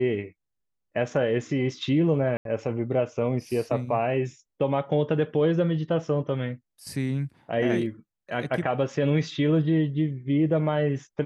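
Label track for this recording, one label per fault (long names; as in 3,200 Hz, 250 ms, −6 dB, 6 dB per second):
2.370000	2.450000	drop-out 82 ms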